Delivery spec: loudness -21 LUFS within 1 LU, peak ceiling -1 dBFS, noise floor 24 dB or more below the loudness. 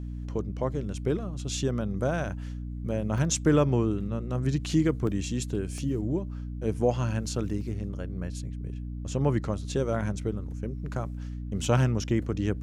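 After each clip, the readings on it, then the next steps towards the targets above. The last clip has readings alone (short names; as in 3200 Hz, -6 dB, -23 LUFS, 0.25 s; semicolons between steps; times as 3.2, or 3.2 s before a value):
dropouts 4; longest dropout 2.1 ms; hum 60 Hz; harmonics up to 300 Hz; hum level -33 dBFS; loudness -29.5 LUFS; peak -11.5 dBFS; loudness target -21.0 LUFS
-> interpolate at 3.18/5.07/5.78/7.61, 2.1 ms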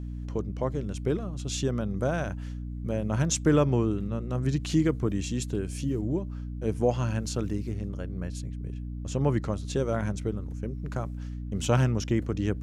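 dropouts 0; hum 60 Hz; harmonics up to 300 Hz; hum level -33 dBFS
-> notches 60/120/180/240/300 Hz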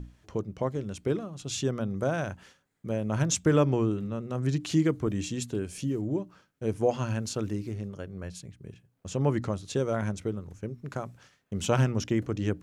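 hum none; loudness -30.0 LUFS; peak -11.5 dBFS; loudness target -21.0 LUFS
-> gain +9 dB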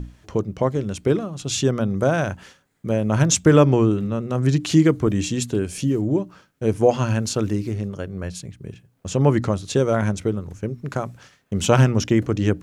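loudness -21.0 LUFS; peak -2.5 dBFS; noise floor -61 dBFS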